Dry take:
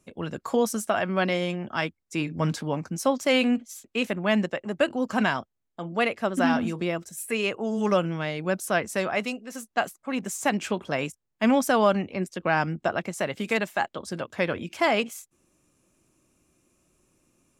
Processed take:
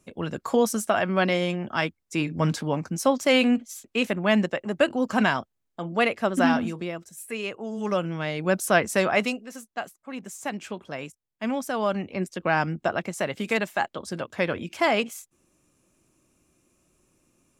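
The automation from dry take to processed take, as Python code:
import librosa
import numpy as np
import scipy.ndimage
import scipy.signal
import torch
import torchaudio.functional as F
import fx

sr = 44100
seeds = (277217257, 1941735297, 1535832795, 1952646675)

y = fx.gain(x, sr, db=fx.line((6.47, 2.0), (6.92, -5.0), (7.76, -5.0), (8.62, 4.5), (9.25, 4.5), (9.73, -7.0), (11.72, -7.0), (12.18, 0.5)))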